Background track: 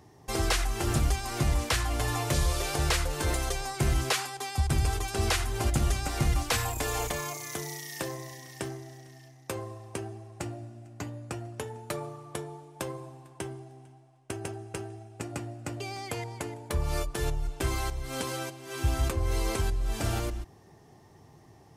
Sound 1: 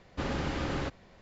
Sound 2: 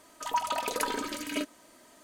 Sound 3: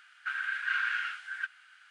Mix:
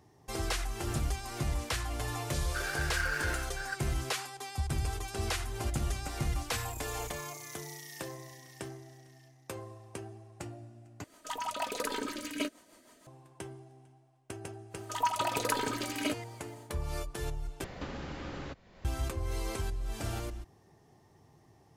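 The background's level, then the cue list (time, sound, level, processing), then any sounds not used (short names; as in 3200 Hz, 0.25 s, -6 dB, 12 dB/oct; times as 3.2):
background track -6.5 dB
2.29 add 3 -1.5 dB + median filter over 15 samples
11.04 replace with 2 -0.5 dB + rotary speaker horn 6.3 Hz
14.69 add 2 -0.5 dB, fades 0.10 s
17.64 replace with 1 -8.5 dB + three-band squash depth 100%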